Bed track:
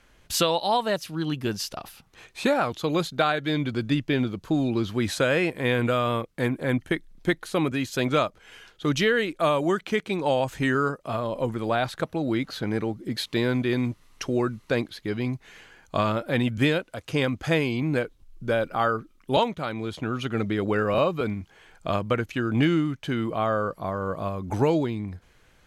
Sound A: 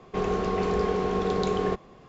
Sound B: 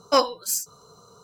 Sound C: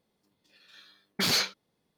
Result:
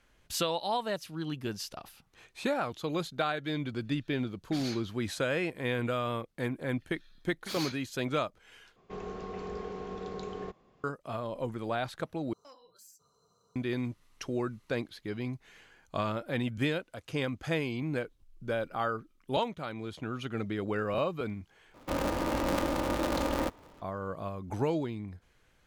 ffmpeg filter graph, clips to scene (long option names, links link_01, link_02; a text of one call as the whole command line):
ffmpeg -i bed.wav -i cue0.wav -i cue1.wav -i cue2.wav -filter_complex "[3:a]asplit=2[link_01][link_02];[1:a]asplit=2[link_03][link_04];[0:a]volume=-8dB[link_05];[link_01]lowpass=11000[link_06];[2:a]acompressor=threshold=-33dB:ratio=5:attack=0.29:release=191:knee=1:detection=peak[link_07];[link_04]aeval=exprs='val(0)*sgn(sin(2*PI*130*n/s))':channel_layout=same[link_08];[link_05]asplit=4[link_09][link_10][link_11][link_12];[link_09]atrim=end=8.764[link_13];[link_03]atrim=end=2.08,asetpts=PTS-STARTPTS,volume=-13.5dB[link_14];[link_10]atrim=start=10.836:end=12.334[link_15];[link_07]atrim=end=1.23,asetpts=PTS-STARTPTS,volume=-18dB[link_16];[link_11]atrim=start=13.556:end=21.744[link_17];[link_08]atrim=end=2.08,asetpts=PTS-STARTPTS,volume=-4.5dB[link_18];[link_12]atrim=start=23.816[link_19];[link_06]atrim=end=1.97,asetpts=PTS-STARTPTS,volume=-16dB,afade=type=in:duration=0.004:curve=hsin,afade=type=out:start_time=1.966:duration=0.004:curve=hsin,adelay=3320[link_20];[link_02]atrim=end=1.97,asetpts=PTS-STARTPTS,volume=-13dB,afade=type=in:duration=0.004:curve=hsin,afade=type=out:start_time=1.966:duration=0.004:curve=hsin,adelay=6270[link_21];[link_13][link_14]acrossfade=duration=0.004:curve1=hsin:curve2=hsin[link_22];[link_22][link_15]acrossfade=duration=0.004:curve1=hsin:curve2=hsin[link_23];[link_23][link_16]acrossfade=duration=0.004:curve1=hsin:curve2=hsin[link_24];[link_24][link_17]acrossfade=duration=0.004:curve1=hsin:curve2=hsin[link_25];[link_25][link_18]acrossfade=duration=0.004:curve1=hsin:curve2=hsin[link_26];[link_26][link_19]acrossfade=duration=0.004:curve1=hsin:curve2=hsin[link_27];[link_27][link_20][link_21]amix=inputs=3:normalize=0" out.wav